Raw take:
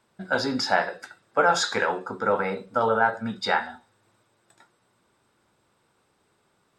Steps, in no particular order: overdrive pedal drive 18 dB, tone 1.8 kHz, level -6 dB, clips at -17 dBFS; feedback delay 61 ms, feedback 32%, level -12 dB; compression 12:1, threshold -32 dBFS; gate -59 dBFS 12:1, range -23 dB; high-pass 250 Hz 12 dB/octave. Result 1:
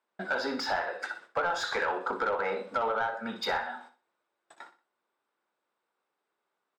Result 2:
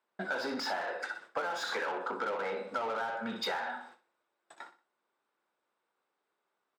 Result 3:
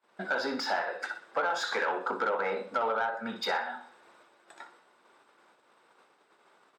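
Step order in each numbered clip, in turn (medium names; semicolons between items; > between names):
compression > high-pass > gate > overdrive pedal > feedback delay; gate > feedback delay > overdrive pedal > high-pass > compression; compression > feedback delay > overdrive pedal > high-pass > gate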